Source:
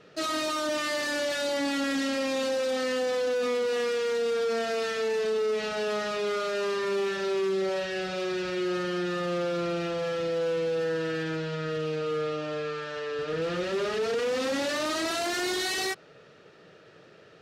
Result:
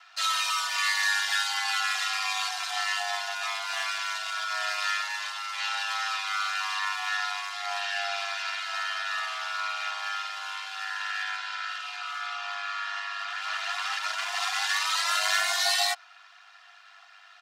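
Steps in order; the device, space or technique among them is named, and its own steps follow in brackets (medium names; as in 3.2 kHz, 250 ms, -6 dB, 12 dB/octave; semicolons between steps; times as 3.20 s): Chebyshev high-pass 740 Hz, order 8; ring-modulated robot voice (ring modulator 50 Hz; comb 2.9 ms, depth 92%); trim +6.5 dB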